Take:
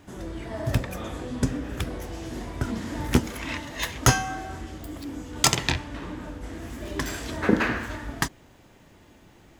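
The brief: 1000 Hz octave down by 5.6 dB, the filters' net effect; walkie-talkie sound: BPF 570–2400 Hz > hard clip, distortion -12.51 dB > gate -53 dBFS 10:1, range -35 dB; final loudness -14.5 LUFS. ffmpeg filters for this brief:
-af "highpass=570,lowpass=2.4k,equalizer=f=1k:t=o:g=-6.5,asoftclip=type=hard:threshold=-23dB,agate=range=-35dB:threshold=-53dB:ratio=10,volume=23dB"

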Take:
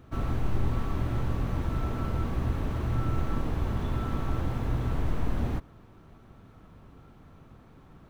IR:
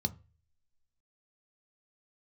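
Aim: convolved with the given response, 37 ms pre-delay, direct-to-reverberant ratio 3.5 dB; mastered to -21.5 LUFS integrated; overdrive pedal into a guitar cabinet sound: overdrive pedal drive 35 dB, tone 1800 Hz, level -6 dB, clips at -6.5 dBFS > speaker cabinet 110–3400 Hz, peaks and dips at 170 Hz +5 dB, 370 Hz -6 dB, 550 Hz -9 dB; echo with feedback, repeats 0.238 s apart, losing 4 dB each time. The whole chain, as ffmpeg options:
-filter_complex "[0:a]aecho=1:1:238|476|714|952|1190|1428|1666|1904|2142:0.631|0.398|0.25|0.158|0.0994|0.0626|0.0394|0.0249|0.0157,asplit=2[a][b];[1:a]atrim=start_sample=2205,adelay=37[c];[b][c]afir=irnorm=-1:irlink=0,volume=-5.5dB[d];[a][d]amix=inputs=2:normalize=0,asplit=2[e][f];[f]highpass=f=720:p=1,volume=35dB,asoftclip=type=tanh:threshold=-6.5dB[g];[e][g]amix=inputs=2:normalize=0,lowpass=f=1.8k:p=1,volume=-6dB,highpass=110,equalizer=f=170:t=q:w=4:g=5,equalizer=f=370:t=q:w=4:g=-6,equalizer=f=550:t=q:w=4:g=-9,lowpass=f=3.4k:w=0.5412,lowpass=f=3.4k:w=1.3066,volume=-4.5dB"

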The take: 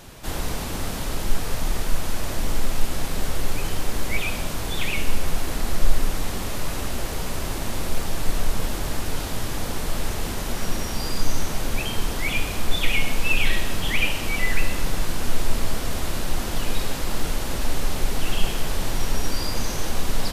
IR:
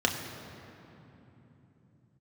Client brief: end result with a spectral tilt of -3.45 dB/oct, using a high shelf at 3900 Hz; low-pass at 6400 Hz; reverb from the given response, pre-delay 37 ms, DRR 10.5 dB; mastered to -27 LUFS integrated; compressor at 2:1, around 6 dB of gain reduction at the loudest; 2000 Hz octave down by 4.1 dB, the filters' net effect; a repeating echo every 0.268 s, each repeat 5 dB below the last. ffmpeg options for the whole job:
-filter_complex "[0:a]lowpass=6.4k,equalizer=f=2k:t=o:g=-8,highshelf=f=3.9k:g=8.5,acompressor=threshold=-18dB:ratio=2,aecho=1:1:268|536|804|1072|1340|1608|1876:0.562|0.315|0.176|0.0988|0.0553|0.031|0.0173,asplit=2[a][b];[1:a]atrim=start_sample=2205,adelay=37[c];[b][c]afir=irnorm=-1:irlink=0,volume=-22dB[d];[a][d]amix=inputs=2:normalize=0,volume=1dB"

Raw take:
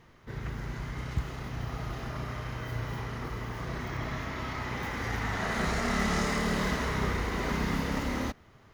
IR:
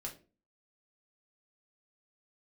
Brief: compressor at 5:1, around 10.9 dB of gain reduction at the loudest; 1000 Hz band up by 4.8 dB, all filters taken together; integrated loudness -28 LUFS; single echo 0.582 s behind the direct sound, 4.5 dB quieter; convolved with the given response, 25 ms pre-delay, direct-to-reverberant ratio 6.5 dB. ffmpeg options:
-filter_complex "[0:a]equalizer=f=1k:t=o:g=6,acompressor=threshold=-36dB:ratio=5,aecho=1:1:582:0.596,asplit=2[a][b];[1:a]atrim=start_sample=2205,adelay=25[c];[b][c]afir=irnorm=-1:irlink=0,volume=-4.5dB[d];[a][d]amix=inputs=2:normalize=0,volume=9dB"

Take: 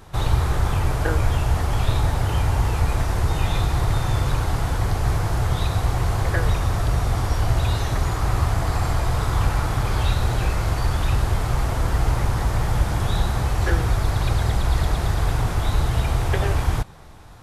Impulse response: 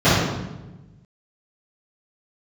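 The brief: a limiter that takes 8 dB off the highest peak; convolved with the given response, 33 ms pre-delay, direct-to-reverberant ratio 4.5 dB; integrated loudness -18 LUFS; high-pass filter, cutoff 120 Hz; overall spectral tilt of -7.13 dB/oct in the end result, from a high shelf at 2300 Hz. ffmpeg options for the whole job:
-filter_complex "[0:a]highpass=120,highshelf=f=2.3k:g=-6.5,alimiter=limit=-19dB:level=0:latency=1,asplit=2[a][b];[1:a]atrim=start_sample=2205,adelay=33[c];[b][c]afir=irnorm=-1:irlink=0,volume=-30dB[d];[a][d]amix=inputs=2:normalize=0,volume=5dB"

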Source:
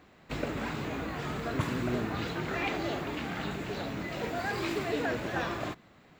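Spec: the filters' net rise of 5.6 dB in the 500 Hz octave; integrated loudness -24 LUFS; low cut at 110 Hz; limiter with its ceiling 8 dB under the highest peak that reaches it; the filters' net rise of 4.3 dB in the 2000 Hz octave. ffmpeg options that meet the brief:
-af "highpass=110,equalizer=f=500:t=o:g=7,equalizer=f=2k:t=o:g=5,volume=7.5dB,alimiter=limit=-13.5dB:level=0:latency=1"

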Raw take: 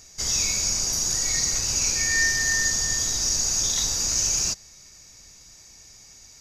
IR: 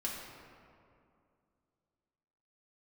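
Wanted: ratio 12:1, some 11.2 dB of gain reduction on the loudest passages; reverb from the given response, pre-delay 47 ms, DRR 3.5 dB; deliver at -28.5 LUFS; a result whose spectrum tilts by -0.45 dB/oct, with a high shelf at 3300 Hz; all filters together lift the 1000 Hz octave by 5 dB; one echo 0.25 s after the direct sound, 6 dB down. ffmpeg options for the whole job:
-filter_complex "[0:a]equalizer=f=1k:t=o:g=5.5,highshelf=f=3.3k:g=8,acompressor=threshold=-25dB:ratio=12,aecho=1:1:250:0.501,asplit=2[a][b];[1:a]atrim=start_sample=2205,adelay=47[c];[b][c]afir=irnorm=-1:irlink=0,volume=-6dB[d];[a][d]amix=inputs=2:normalize=0,volume=-4.5dB"

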